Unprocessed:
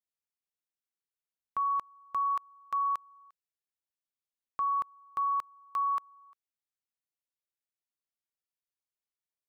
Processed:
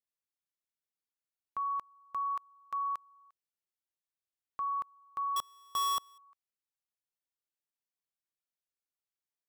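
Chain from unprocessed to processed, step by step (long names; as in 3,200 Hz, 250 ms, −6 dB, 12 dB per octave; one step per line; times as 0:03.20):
0:05.36–0:06.18: each half-wave held at its own peak
level −4.5 dB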